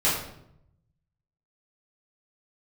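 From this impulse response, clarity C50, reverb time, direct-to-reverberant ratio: 3.0 dB, 0.75 s, −11.5 dB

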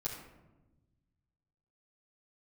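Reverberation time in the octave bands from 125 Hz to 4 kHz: 2.2, 1.7, 1.2, 0.95, 0.75, 0.50 seconds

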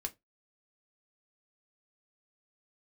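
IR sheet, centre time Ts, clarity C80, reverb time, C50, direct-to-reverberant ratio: 5 ms, 32.0 dB, 0.20 s, 23.0 dB, 4.0 dB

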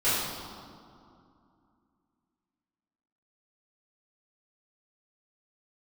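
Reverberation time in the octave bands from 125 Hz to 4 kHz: 2.8, 3.2, 2.4, 2.6, 1.7, 1.4 seconds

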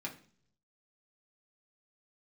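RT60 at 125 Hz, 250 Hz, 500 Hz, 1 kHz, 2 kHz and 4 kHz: 1.0, 0.70, 0.55, 0.45, 0.45, 0.50 seconds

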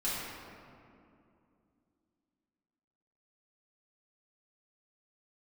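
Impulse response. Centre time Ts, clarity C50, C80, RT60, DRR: 135 ms, −2.0 dB, 0.0 dB, 2.6 s, −10.5 dB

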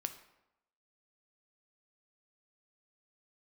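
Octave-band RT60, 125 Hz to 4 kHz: 0.80, 0.85, 0.90, 0.90, 0.75, 0.60 seconds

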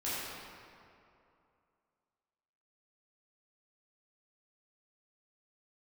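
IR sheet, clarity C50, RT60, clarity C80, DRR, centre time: −4.0 dB, 2.6 s, −2.0 dB, −11.0 dB, 160 ms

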